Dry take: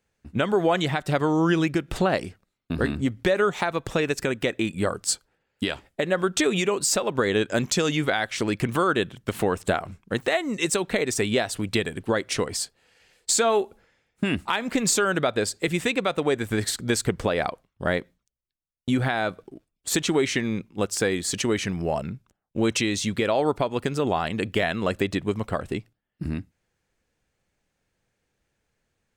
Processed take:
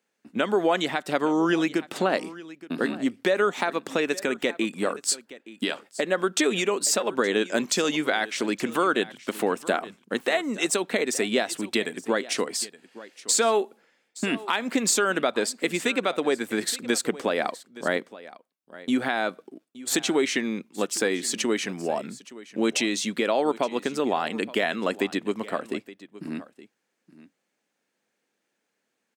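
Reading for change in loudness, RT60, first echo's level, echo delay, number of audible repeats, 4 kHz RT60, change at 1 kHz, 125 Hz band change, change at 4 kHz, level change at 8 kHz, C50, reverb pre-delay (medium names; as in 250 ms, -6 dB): -1.0 dB, no reverb, -18.0 dB, 870 ms, 1, no reverb, -0.5 dB, -12.0 dB, 0.0 dB, 0.0 dB, no reverb, no reverb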